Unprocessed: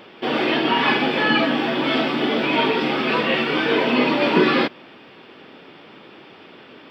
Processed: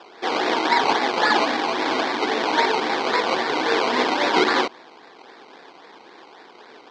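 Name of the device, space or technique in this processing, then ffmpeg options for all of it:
circuit-bent sampling toy: -af "acrusher=samples=20:mix=1:aa=0.000001:lfo=1:lforange=12:lforate=3.7,highpass=570,equalizer=f=590:t=q:w=4:g=-8,equalizer=f=1.3k:t=q:w=4:g=-7,equalizer=f=2.7k:t=q:w=4:g=-7,lowpass=f=4.5k:w=0.5412,lowpass=f=4.5k:w=1.3066,volume=5.5dB"

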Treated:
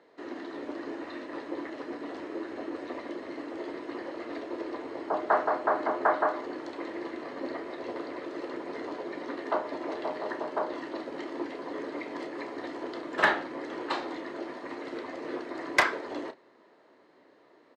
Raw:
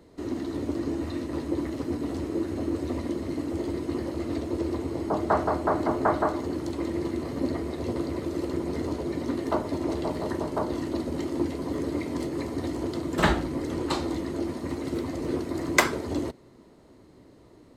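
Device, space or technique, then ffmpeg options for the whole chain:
megaphone: -filter_complex "[0:a]highpass=510,lowpass=3.3k,equalizer=f=1.7k:t=o:w=0.25:g=6.5,asoftclip=type=hard:threshold=-12.5dB,asplit=2[a][b];[b]adelay=31,volume=-11dB[c];[a][c]amix=inputs=2:normalize=0"

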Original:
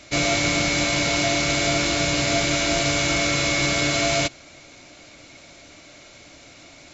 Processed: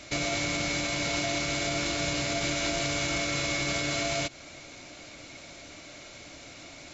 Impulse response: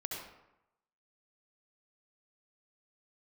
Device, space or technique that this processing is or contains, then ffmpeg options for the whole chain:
stacked limiters: -af "alimiter=limit=-15dB:level=0:latency=1:release=178,alimiter=limit=-20.5dB:level=0:latency=1:release=90"

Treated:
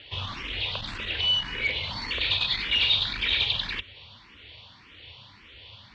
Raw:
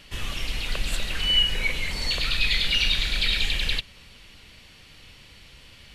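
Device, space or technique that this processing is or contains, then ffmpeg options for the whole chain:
barber-pole phaser into a guitar amplifier: -filter_complex "[0:a]asplit=2[a][b];[b]afreqshift=1.8[c];[a][c]amix=inputs=2:normalize=1,asoftclip=type=tanh:threshold=-22dB,highpass=78,equalizer=f=97:t=q:w=4:g=7,equalizer=f=170:t=q:w=4:g=-7,equalizer=f=990:t=q:w=4:g=7,equalizer=f=3.5k:t=q:w=4:g=7,lowpass=f=4.4k:w=0.5412,lowpass=f=4.4k:w=1.3066,volume=2.5dB"

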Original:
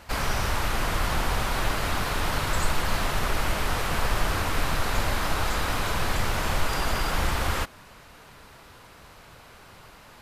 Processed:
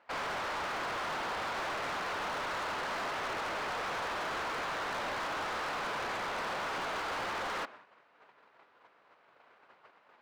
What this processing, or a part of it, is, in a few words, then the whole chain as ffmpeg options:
walkie-talkie: -af "highpass=410,lowpass=2.2k,asoftclip=type=hard:threshold=-34dB,agate=range=-13dB:threshold=-50dB:ratio=16:detection=peak"

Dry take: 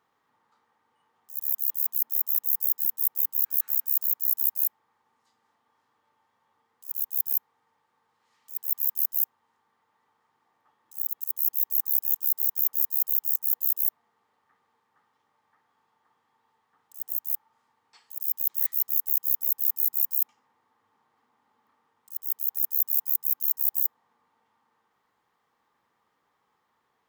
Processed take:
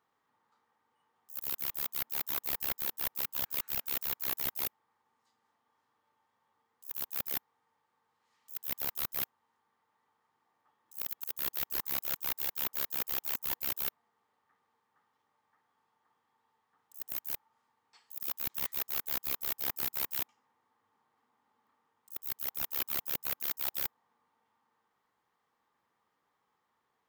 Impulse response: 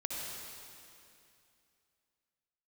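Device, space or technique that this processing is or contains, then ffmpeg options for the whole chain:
saturation between pre-emphasis and de-emphasis: -af "highshelf=f=5.8k:g=10.5,asoftclip=type=tanh:threshold=-11.5dB,highshelf=f=5.8k:g=-10.5,volume=-5.5dB"

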